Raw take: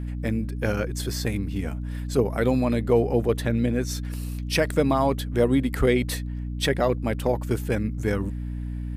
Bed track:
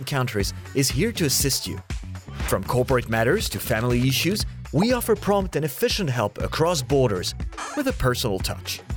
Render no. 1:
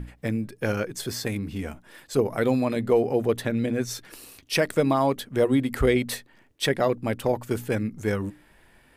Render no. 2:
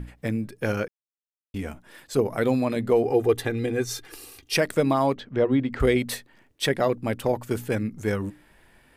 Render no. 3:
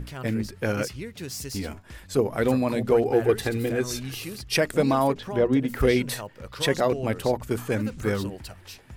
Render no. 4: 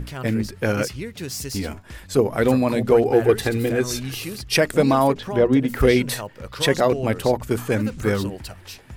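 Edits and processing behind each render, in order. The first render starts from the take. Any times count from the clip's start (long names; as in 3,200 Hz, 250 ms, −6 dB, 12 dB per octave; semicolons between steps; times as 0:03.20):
mains-hum notches 60/120/180/240/300 Hz
0:00.88–0:01.54: silence; 0:03.05–0:04.57: comb filter 2.5 ms; 0:05.14–0:05.80: high-frequency loss of the air 180 metres
mix in bed track −14 dB
level +4.5 dB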